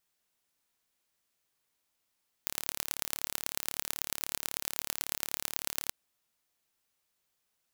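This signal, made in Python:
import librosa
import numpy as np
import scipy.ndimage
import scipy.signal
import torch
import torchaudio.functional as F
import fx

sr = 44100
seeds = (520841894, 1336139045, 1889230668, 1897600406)

y = fx.impulse_train(sr, length_s=3.44, per_s=36.2, accent_every=4, level_db=-3.0)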